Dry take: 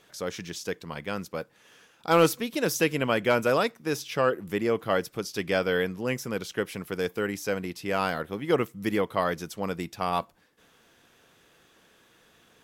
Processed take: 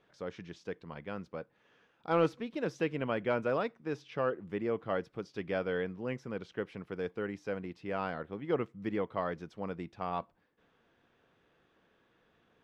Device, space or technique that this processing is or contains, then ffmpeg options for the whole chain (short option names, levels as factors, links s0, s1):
phone in a pocket: -af "lowpass=3800,highshelf=f=2200:g=-8.5,volume=0.447"